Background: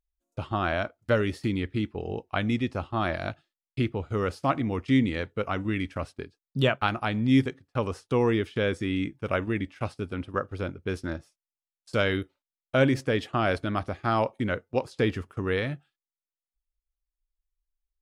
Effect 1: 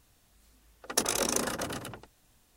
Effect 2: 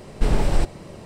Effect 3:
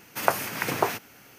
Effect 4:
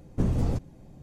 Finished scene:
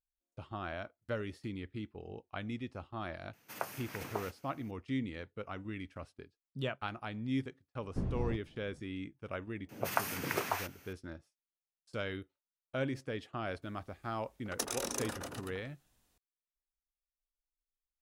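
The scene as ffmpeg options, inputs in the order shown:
-filter_complex "[3:a]asplit=2[s0][s1];[0:a]volume=0.211[s2];[4:a]lowpass=3100[s3];[s1]acrossover=split=610[s4][s5];[s5]adelay=140[s6];[s4][s6]amix=inputs=2:normalize=0[s7];[s0]atrim=end=1.38,asetpts=PTS-STARTPTS,volume=0.158,afade=t=in:d=0.004:c=hsin,afade=t=out:st=1.376:d=0.004:c=hsin,adelay=146853S[s8];[s3]atrim=end=1.02,asetpts=PTS-STARTPTS,volume=0.299,afade=t=in:d=0.004:c=hsin,afade=t=out:st=1.016:d=0.004:c=hsin,adelay=343098S[s9];[s7]atrim=end=1.38,asetpts=PTS-STARTPTS,volume=0.422,afade=t=in:d=0.004:c=hsin,afade=t=out:st=1.376:d=0.004:c=hsin,adelay=9550[s10];[1:a]atrim=end=2.56,asetpts=PTS-STARTPTS,volume=0.355,afade=t=in:d=0.004:c=hsin,afade=t=out:st=2.556:d=0.004:c=hsin,adelay=13620[s11];[s2][s8][s9][s10][s11]amix=inputs=5:normalize=0"

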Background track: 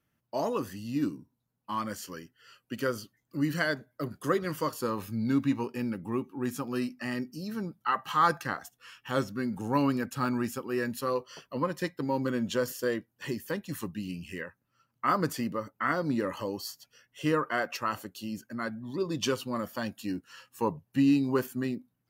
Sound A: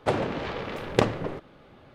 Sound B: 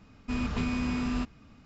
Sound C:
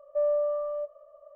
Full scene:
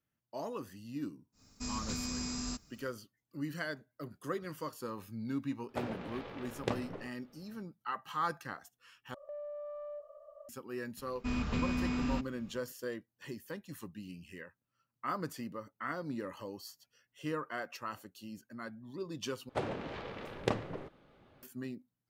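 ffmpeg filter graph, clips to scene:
-filter_complex "[2:a]asplit=2[s0][s1];[1:a]asplit=2[s2][s3];[0:a]volume=0.316[s4];[s0]aexciter=amount=5.7:drive=9.4:freq=4500[s5];[s2]asplit=2[s6][s7];[s7]adelay=17,volume=0.251[s8];[s6][s8]amix=inputs=2:normalize=0[s9];[3:a]acompressor=threshold=0.01:ratio=16:attack=1.6:release=22:knee=1:detection=peak[s10];[s4]asplit=3[s11][s12][s13];[s11]atrim=end=9.144[s14];[s10]atrim=end=1.35,asetpts=PTS-STARTPTS,volume=0.841[s15];[s12]atrim=start=10.486:end=19.494[s16];[s3]atrim=end=1.94,asetpts=PTS-STARTPTS,volume=0.299[s17];[s13]atrim=start=21.426[s18];[s5]atrim=end=1.65,asetpts=PTS-STARTPTS,volume=0.316,afade=t=in:d=0.1,afade=t=out:st=1.55:d=0.1,adelay=1320[s19];[s9]atrim=end=1.94,asetpts=PTS-STARTPTS,volume=0.211,afade=t=in:d=0.004:c=hsin,afade=t=out:st=1.936:d=0.004:c=hsin,adelay=250929S[s20];[s1]atrim=end=1.65,asetpts=PTS-STARTPTS,volume=0.668,afade=t=in:d=0.02,afade=t=out:st=1.63:d=0.02,adelay=10960[s21];[s14][s15]acrossfade=d=0.004:c1=hsin:c2=hsin[s22];[s22][s16]acrossfade=d=0.004:c1=hsin:c2=hsin[s23];[s23][s17]acrossfade=d=0.004:c1=hsin:c2=hsin[s24];[s24][s18]acrossfade=d=0.004:c1=hsin:c2=hsin[s25];[s25][s19][s20][s21]amix=inputs=4:normalize=0"

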